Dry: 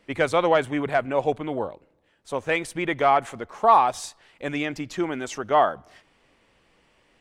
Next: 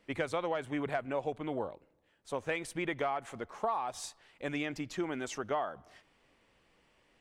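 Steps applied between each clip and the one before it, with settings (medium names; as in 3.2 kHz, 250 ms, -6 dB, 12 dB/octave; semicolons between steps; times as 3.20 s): compression 10:1, threshold -23 dBFS, peak gain reduction 12.5 dB; trim -6.5 dB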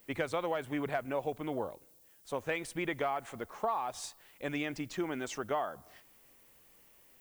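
added noise violet -63 dBFS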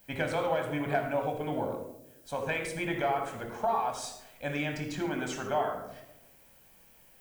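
reverberation RT60 0.90 s, pre-delay 21 ms, DRR 2.5 dB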